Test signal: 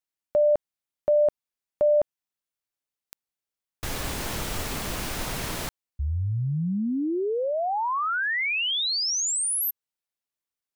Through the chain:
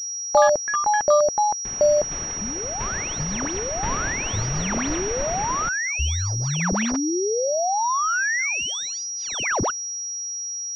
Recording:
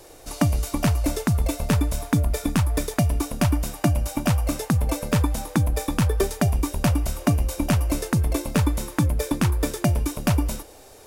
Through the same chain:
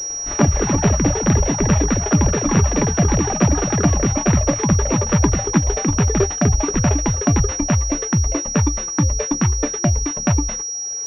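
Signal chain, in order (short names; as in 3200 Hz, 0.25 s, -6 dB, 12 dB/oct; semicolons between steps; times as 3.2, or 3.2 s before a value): reverb removal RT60 1 s; in parallel at -5 dB: hard clip -14.5 dBFS; on the sum: echoes that change speed 99 ms, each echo +6 st, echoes 3; pulse-width modulation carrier 5700 Hz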